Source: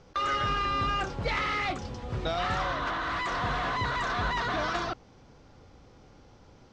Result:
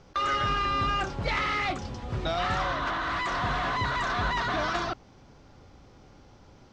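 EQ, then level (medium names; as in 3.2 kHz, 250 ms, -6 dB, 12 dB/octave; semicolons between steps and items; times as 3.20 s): band-stop 480 Hz, Q 12; +1.5 dB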